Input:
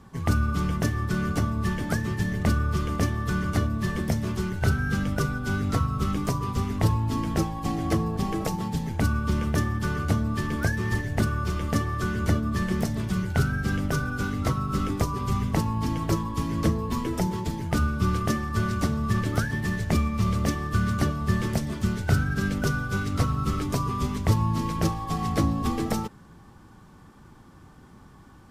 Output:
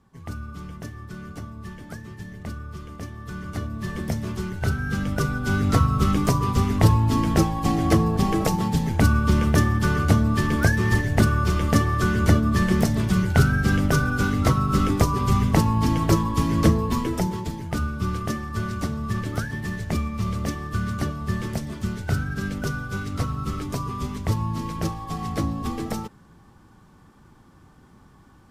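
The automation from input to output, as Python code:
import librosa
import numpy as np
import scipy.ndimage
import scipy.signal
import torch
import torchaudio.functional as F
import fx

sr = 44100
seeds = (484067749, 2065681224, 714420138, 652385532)

y = fx.gain(x, sr, db=fx.line((3.03, -11.0), (4.06, -1.0), (4.8, -1.0), (5.77, 6.0), (16.73, 6.0), (17.65, -2.0)))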